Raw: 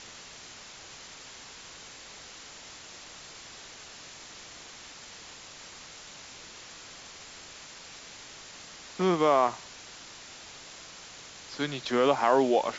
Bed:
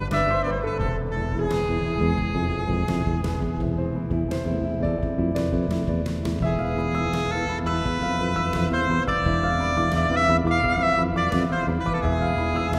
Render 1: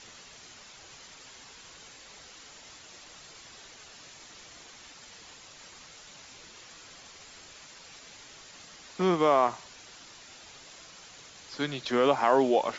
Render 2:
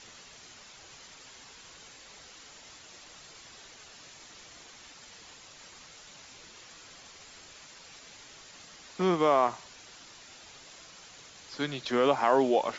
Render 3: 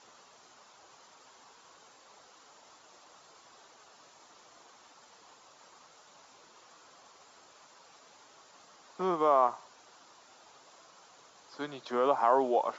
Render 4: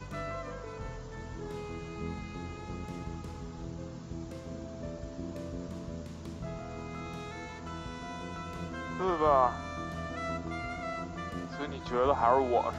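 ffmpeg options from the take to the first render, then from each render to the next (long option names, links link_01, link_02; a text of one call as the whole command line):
ffmpeg -i in.wav -af "afftdn=noise_reduction=6:noise_floor=-48" out.wav
ffmpeg -i in.wav -af "volume=-1dB" out.wav
ffmpeg -i in.wav -af "highpass=frequency=580:poles=1,highshelf=frequency=1500:width_type=q:width=1.5:gain=-9" out.wav
ffmpeg -i in.wav -i bed.wav -filter_complex "[1:a]volume=-16.5dB[link_01];[0:a][link_01]amix=inputs=2:normalize=0" out.wav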